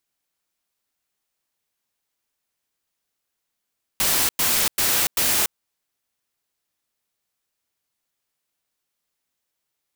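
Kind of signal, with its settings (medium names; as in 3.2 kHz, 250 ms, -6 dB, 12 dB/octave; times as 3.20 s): noise bursts white, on 0.29 s, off 0.10 s, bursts 4, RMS -20 dBFS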